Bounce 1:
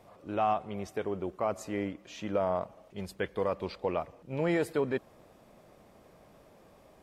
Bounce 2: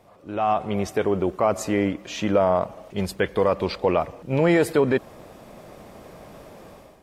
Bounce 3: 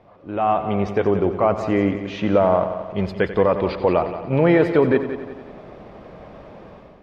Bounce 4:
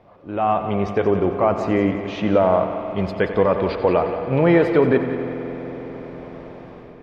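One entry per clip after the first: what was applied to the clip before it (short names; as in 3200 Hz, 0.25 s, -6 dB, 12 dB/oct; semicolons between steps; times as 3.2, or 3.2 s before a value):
in parallel at +2 dB: limiter -26.5 dBFS, peak gain reduction 7.5 dB; on the sum: AGC gain up to 12 dB; gain -5 dB
air absorption 260 m; multi-head echo 90 ms, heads first and second, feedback 50%, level -13.5 dB; gain +3.5 dB
reverb RT60 5.6 s, pre-delay 47 ms, DRR 9 dB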